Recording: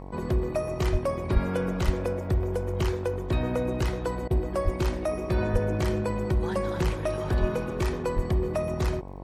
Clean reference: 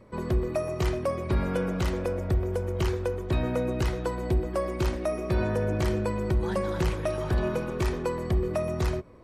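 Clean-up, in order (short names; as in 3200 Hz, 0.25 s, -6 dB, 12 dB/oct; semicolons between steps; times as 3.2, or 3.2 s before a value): de-click; de-hum 47.5 Hz, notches 23; de-plosive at 0.91/1.33/1.85/4.64/5.52/7.4/8.15; interpolate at 4.28, 27 ms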